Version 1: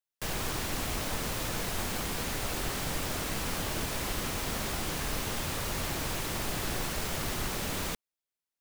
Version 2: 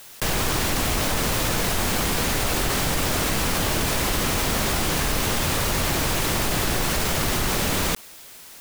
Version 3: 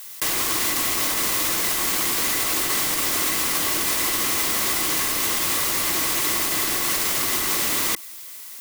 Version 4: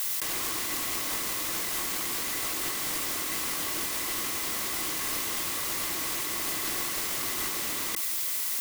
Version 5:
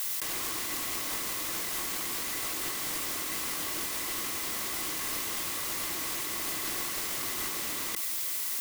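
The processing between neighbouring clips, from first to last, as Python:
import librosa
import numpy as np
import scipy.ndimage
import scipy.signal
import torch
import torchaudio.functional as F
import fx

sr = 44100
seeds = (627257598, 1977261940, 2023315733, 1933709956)

y1 = fx.env_flatten(x, sr, amount_pct=70)
y1 = y1 * 10.0 ** (8.0 / 20.0)
y2 = fx.tilt_eq(y1, sr, slope=3.0)
y2 = fx.small_body(y2, sr, hz=(320.0, 1100.0, 2000.0), ring_ms=30, db=9)
y2 = y2 * 10.0 ** (-5.0 / 20.0)
y3 = fx.over_compress(y2, sr, threshold_db=-31.0, ratio=-1.0)
y4 = y3 + 10.0 ** (-20.5 / 20.0) * np.pad(y3, (int(1058 * sr / 1000.0), 0))[:len(y3)]
y4 = y4 * 10.0 ** (-2.5 / 20.0)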